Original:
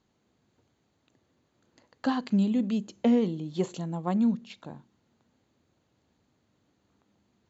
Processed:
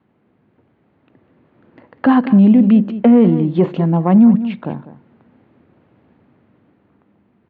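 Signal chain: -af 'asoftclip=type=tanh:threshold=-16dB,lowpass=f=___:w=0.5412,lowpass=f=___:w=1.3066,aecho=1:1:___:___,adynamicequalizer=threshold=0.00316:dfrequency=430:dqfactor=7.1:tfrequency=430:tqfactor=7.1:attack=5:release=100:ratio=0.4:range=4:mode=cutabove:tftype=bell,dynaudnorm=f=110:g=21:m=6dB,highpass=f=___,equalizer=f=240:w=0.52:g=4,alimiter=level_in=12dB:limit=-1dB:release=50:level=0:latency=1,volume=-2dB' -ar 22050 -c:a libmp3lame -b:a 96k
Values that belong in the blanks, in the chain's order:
2.5k, 2.5k, 198, 0.168, 81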